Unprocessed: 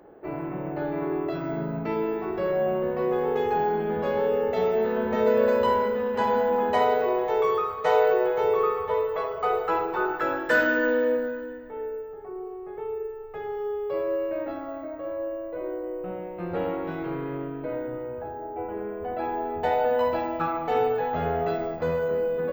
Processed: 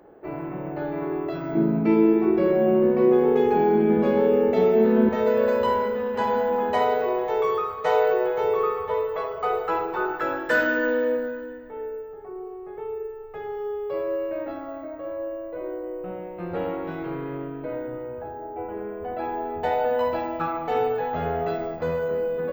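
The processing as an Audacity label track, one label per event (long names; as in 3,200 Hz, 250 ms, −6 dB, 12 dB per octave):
1.550000	5.090000	hollow resonant body resonances 230/330/2,300 Hz, height 14 dB, ringing for 55 ms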